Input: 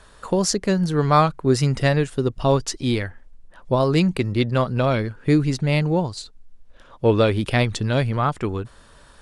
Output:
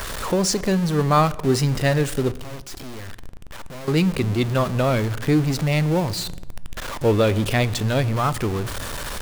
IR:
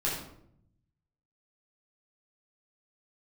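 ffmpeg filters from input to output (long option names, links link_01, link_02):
-filter_complex "[0:a]aeval=exprs='val(0)+0.5*0.0794*sgn(val(0))':channel_layout=same,asettb=1/sr,asplit=3[link_01][link_02][link_03];[link_01]atrim=end=2.334[link_04];[link_02]atrim=start=2.33:end=3.88,asetpts=PTS-STARTPTS,afade=type=in:duration=0.004:curve=qsin,afade=type=out:start_time=1.546:duration=0.004:curve=qsin,aeval=exprs='(tanh(44.7*val(0)+0.35)-tanh(0.35))/44.7':channel_layout=same[link_05];[link_03]atrim=start=3.876[link_06];[link_04][link_05]acrossfade=duration=0.004:curve1=hsin:curve2=qsin[link_07];[link_07][link_06]acrossfade=duration=0.004:curve1=qsin:curve2=hsin,asplit=2[link_08][link_09];[1:a]atrim=start_sample=2205,asetrate=29106,aresample=44100[link_10];[link_09][link_10]afir=irnorm=-1:irlink=0,volume=-26dB[link_11];[link_08][link_11]amix=inputs=2:normalize=0,volume=-3dB"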